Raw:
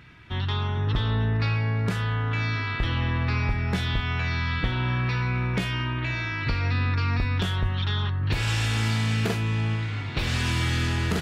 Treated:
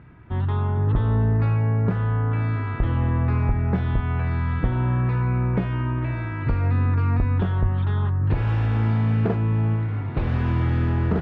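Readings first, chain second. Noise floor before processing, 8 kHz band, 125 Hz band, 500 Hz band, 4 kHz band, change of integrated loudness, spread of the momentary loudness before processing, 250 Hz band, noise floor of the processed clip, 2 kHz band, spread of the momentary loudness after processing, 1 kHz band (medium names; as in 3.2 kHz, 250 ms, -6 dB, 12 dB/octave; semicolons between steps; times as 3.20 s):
-30 dBFS, under -25 dB, +4.5 dB, +4.5 dB, under -15 dB, +3.0 dB, 3 LU, +4.5 dB, -28 dBFS, -7.0 dB, 4 LU, +1.0 dB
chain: low-pass 1 kHz 12 dB/octave; trim +4.5 dB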